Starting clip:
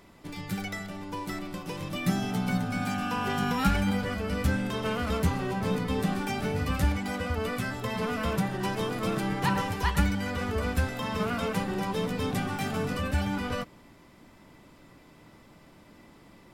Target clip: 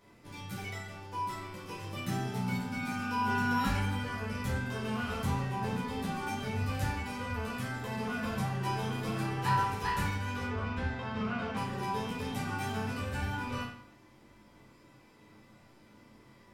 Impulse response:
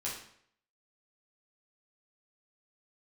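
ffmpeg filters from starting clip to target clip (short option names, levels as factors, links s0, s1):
-filter_complex "[0:a]asettb=1/sr,asplit=3[s0][s1][s2];[s0]atrim=end=10.444[s3];[s1]atrim=start=10.44:end=11.57,asetpts=PTS-STARTPTS,afade=t=in:d=0.004:c=qsin,afade=t=out:st=1.126:d=0.004:c=qsin,lowpass=3700[s4];[s2]atrim=start=11.566[s5];[s3][s4]acrossfade=d=0.004:c1=hsin:c2=qsin[s6];[s6][s5]acrossfade=d=0.004:c1=qsin:c2=hsin[s7];[1:a]atrim=start_sample=2205[s8];[s7][s8]afir=irnorm=-1:irlink=0,volume=0.473"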